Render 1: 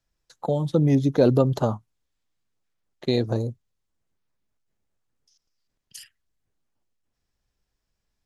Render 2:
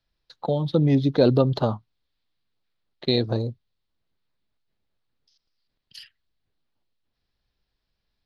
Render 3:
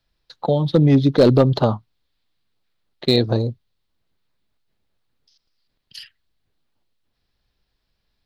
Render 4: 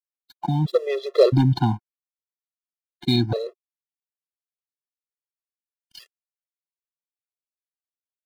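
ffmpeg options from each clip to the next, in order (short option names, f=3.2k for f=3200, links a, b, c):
-af "highshelf=f=5.6k:t=q:w=3:g=-10.5"
-af "asoftclip=type=hard:threshold=-11.5dB,volume=5.5dB"
-af "aeval=exprs='sgn(val(0))*max(abs(val(0))-0.00794,0)':c=same,afftfilt=real='re*gt(sin(2*PI*0.75*pts/sr)*(1-2*mod(floor(b*sr/1024/350),2)),0)':imag='im*gt(sin(2*PI*0.75*pts/sr)*(1-2*mod(floor(b*sr/1024/350),2)),0)':win_size=1024:overlap=0.75"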